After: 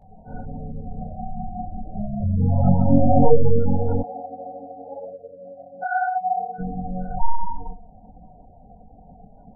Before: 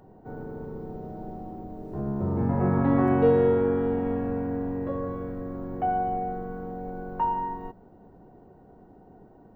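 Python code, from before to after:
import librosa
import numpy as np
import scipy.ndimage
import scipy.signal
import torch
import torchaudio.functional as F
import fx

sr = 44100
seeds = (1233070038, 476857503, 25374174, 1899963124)

y = fx.tracing_dist(x, sr, depth_ms=0.44)
y = fx.peak_eq(y, sr, hz=2600.0, db=-4.5, octaves=1.4)
y = y + 0.84 * np.pad(y, (int(1.4 * sr / 1000.0), 0))[:len(y)]
y = fx.echo_feedback(y, sr, ms=65, feedback_pct=35, wet_db=-11)
y = fx.spec_gate(y, sr, threshold_db=-15, keep='strong')
y = fx.chorus_voices(y, sr, voices=6, hz=1.3, base_ms=21, depth_ms=3.0, mix_pct=65)
y = fx.highpass(y, sr, hz=670.0, slope=12, at=(4.02, 6.58), fade=0.02)
y = fx.end_taper(y, sr, db_per_s=340.0)
y = y * librosa.db_to_amplitude(5.0)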